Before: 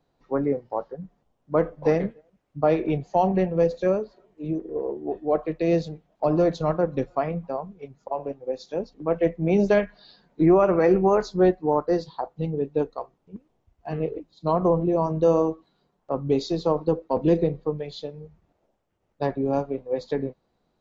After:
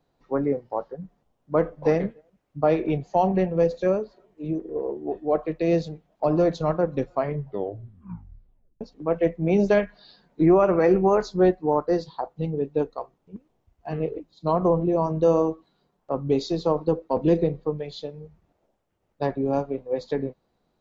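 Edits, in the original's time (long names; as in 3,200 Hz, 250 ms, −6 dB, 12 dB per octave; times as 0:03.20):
0:07.15: tape stop 1.66 s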